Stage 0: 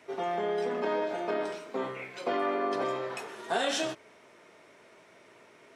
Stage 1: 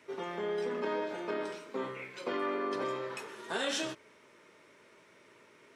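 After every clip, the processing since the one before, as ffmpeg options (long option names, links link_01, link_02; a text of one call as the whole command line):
ffmpeg -i in.wav -af "equalizer=frequency=710:width_type=o:width=0.22:gain=-14,volume=-2.5dB" out.wav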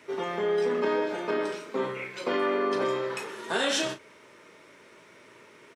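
ffmpeg -i in.wav -filter_complex "[0:a]asplit=2[link_01][link_02];[link_02]adelay=36,volume=-10dB[link_03];[link_01][link_03]amix=inputs=2:normalize=0,volume=6.5dB" out.wav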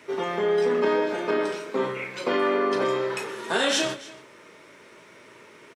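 ffmpeg -i in.wav -af "aecho=1:1:282:0.112,volume=3.5dB" out.wav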